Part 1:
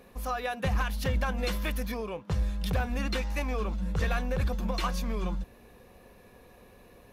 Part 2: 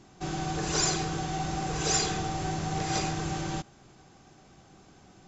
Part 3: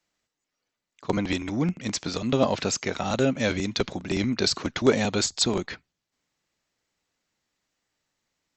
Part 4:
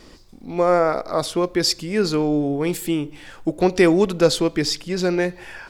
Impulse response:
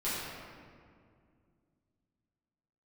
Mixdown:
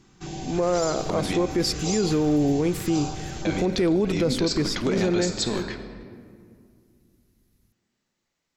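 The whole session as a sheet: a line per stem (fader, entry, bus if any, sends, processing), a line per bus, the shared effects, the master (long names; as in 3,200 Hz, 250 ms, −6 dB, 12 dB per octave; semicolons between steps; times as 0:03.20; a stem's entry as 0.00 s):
−6.5 dB, 0.60 s, no send, inverse Chebyshev band-stop filter 320–2,700 Hz; downward compressor 2.5 to 1, threshold −41 dBFS, peak gain reduction 11.5 dB
−1.5 dB, 0.00 s, send −14.5 dB, notch on a step sequencer 3.8 Hz 610–2,300 Hz
−2.5 dB, 0.00 s, muted 0:01.46–0:03.45, send −12.5 dB, no processing
−1.5 dB, 0.00 s, no send, tilt shelving filter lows +5 dB, about 650 Hz; noise gate with hold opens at −30 dBFS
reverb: on, RT60 2.2 s, pre-delay 5 ms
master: brickwall limiter −14.5 dBFS, peak gain reduction 11.5 dB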